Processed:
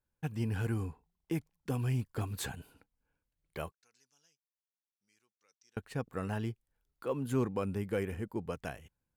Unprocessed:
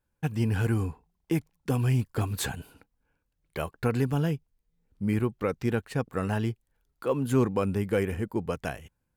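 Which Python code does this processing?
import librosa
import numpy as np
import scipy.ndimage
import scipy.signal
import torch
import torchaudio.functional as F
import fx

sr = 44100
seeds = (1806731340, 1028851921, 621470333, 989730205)

y = fx.bandpass_q(x, sr, hz=5900.0, q=9.1, at=(3.72, 5.77))
y = F.gain(torch.from_numpy(y), -7.5).numpy()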